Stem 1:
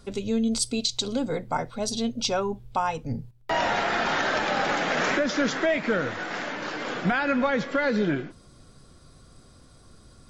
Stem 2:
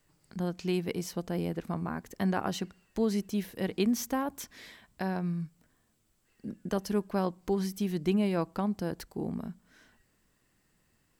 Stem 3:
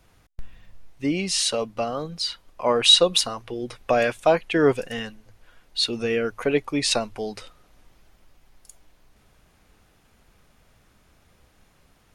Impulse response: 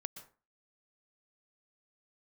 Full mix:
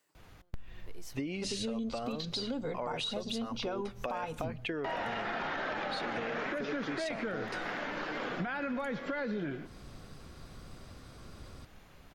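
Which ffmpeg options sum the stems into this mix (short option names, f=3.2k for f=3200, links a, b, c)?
-filter_complex "[0:a]acrossover=split=3800[a][b];[b]acompressor=threshold=-49dB:ratio=4:attack=1:release=60[c];[a][c]amix=inputs=2:normalize=0,adelay=1350,volume=0.5dB,asplit=2[d][e];[e]volume=-14.5dB[f];[1:a]highpass=340,acompressor=threshold=-42dB:ratio=4,aeval=exprs='val(0)*pow(10,-31*(0.5-0.5*cos(2*PI*0.94*n/s))/20)':c=same,volume=-2dB[g];[2:a]bandreject=f=5.4k:w=23,acompressor=threshold=-28dB:ratio=6,adelay=150,volume=2.5dB,asplit=2[h][i];[i]volume=-17dB[j];[d][h]amix=inputs=2:normalize=0,equalizer=f=9.5k:w=1.1:g=-10,alimiter=limit=-17.5dB:level=0:latency=1:release=34,volume=0dB[k];[3:a]atrim=start_sample=2205[l];[f][j]amix=inputs=2:normalize=0[m];[m][l]afir=irnorm=-1:irlink=0[n];[g][k][n]amix=inputs=3:normalize=0,acompressor=threshold=-35dB:ratio=4"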